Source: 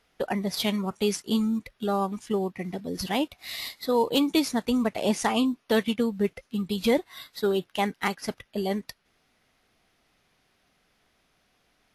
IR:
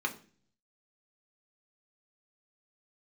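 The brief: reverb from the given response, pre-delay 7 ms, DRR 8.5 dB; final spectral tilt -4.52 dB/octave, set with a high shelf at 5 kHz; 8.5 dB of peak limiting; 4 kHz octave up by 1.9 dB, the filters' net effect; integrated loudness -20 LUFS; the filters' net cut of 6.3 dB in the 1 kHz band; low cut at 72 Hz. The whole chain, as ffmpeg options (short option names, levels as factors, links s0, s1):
-filter_complex "[0:a]highpass=72,equalizer=f=1000:t=o:g=-8.5,equalizer=f=4000:t=o:g=4.5,highshelf=f=5000:g=-3.5,alimiter=limit=0.106:level=0:latency=1,asplit=2[s0][s1];[1:a]atrim=start_sample=2205,adelay=7[s2];[s1][s2]afir=irnorm=-1:irlink=0,volume=0.188[s3];[s0][s3]amix=inputs=2:normalize=0,volume=3.16"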